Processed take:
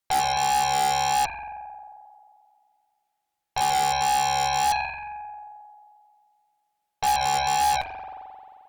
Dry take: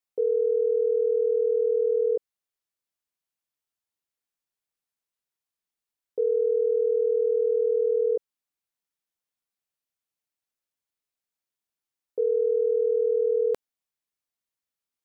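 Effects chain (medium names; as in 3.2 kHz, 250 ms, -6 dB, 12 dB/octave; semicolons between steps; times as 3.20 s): in parallel at -0.5 dB: peak limiter -26 dBFS, peak gain reduction 9 dB; on the sum: speed mistake 45 rpm record played at 78 rpm; flange 0.34 Hz, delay 5 ms, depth 2.7 ms, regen +60%; spring tank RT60 2.2 s, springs 44 ms, chirp 60 ms, DRR -0.5 dB; Chebyshev shaper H 4 -13 dB, 7 -8 dB, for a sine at -20 dBFS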